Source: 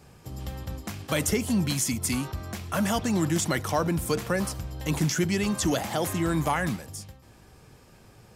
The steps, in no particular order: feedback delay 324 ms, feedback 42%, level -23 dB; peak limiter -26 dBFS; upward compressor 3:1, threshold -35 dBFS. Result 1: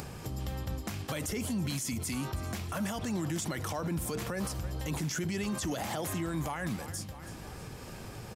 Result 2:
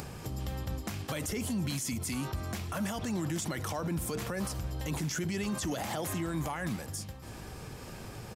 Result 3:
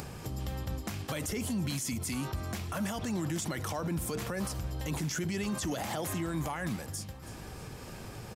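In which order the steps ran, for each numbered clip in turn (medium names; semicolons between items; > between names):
feedback delay > peak limiter > upward compressor; peak limiter > upward compressor > feedback delay; peak limiter > feedback delay > upward compressor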